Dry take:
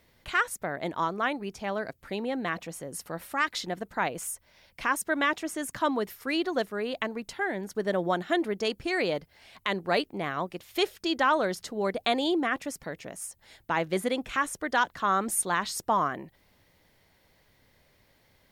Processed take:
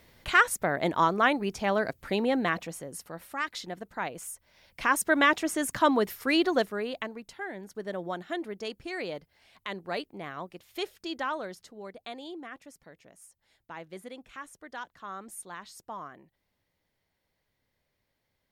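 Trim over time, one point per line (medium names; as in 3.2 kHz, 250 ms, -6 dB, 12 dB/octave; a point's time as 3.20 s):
2.35 s +5 dB
3.12 s -5 dB
4.33 s -5 dB
5.04 s +4 dB
6.50 s +4 dB
7.24 s -7.5 dB
11.19 s -7.5 dB
11.92 s -15 dB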